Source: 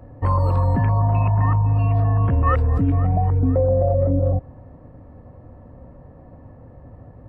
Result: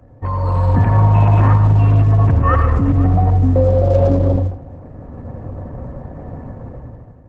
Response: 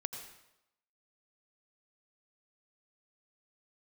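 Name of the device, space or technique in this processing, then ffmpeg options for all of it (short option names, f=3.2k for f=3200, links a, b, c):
speakerphone in a meeting room: -filter_complex "[1:a]atrim=start_sample=2205[a];[0:a][a]afir=irnorm=-1:irlink=0,dynaudnorm=f=110:g=11:m=15.5dB,volume=-1.5dB" -ar 48000 -c:a libopus -b:a 12k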